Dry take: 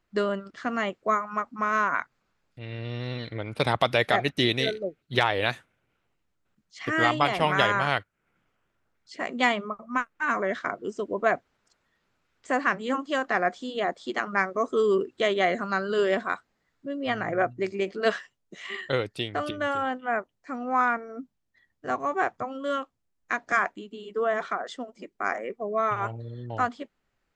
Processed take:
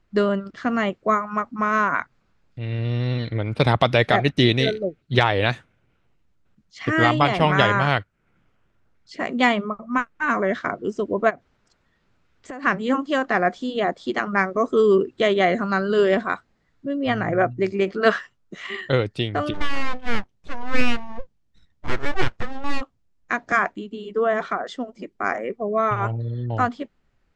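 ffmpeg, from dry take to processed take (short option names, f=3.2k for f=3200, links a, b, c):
-filter_complex "[0:a]asplit=3[a][b][c];[a]afade=t=out:st=11.29:d=0.02[d];[b]acompressor=threshold=-37dB:ratio=10:attack=3.2:release=140:knee=1:detection=peak,afade=t=in:st=11.29:d=0.02,afade=t=out:st=12.62:d=0.02[e];[c]afade=t=in:st=12.62:d=0.02[f];[d][e][f]amix=inputs=3:normalize=0,asettb=1/sr,asplit=3[g][h][i];[g]atrim=end=17.764[j];[h]atrim=start=17.76:end=18.67,asetpts=PTS-STARTPTS,afade=t=in:d=0.004:c=qsin,afade=t=out:st=0.906:d=0.004:c=qsin,equalizer=f=1.3k:t=o:w=0.71:g=7.5[k];[i]atrim=start=18.666[l];[j][k]acrossfade=d=0.004:c1=hsin:c2=qsin[m];[m][l]acrossfade=d=0.004:c1=qsin:c2=hsin,asplit=3[n][o][p];[n]afade=t=out:st=19.53:d=0.02[q];[o]aeval=exprs='abs(val(0))':c=same,afade=t=in:st=19.53:d=0.02,afade=t=out:st=22.8:d=0.02[r];[p]afade=t=in:st=22.8:d=0.02[s];[q][r][s]amix=inputs=3:normalize=0,lowpass=7k,lowshelf=f=250:g=9.5,volume=3.5dB"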